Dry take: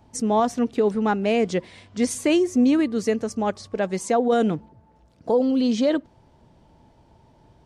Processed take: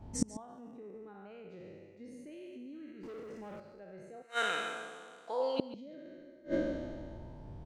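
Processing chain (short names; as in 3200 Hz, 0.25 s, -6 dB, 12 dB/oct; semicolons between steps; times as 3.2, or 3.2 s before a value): spectral trails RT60 2.11 s; 4.22–5.6 HPF 1500 Hz 12 dB/oct; spectral noise reduction 8 dB; tilt -2.5 dB/oct; 3.03–3.6 sample leveller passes 3; limiter -11 dBFS, peak gain reduction 6.5 dB; flipped gate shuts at -20 dBFS, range -35 dB; echo 0.141 s -14.5 dB; gain +4 dB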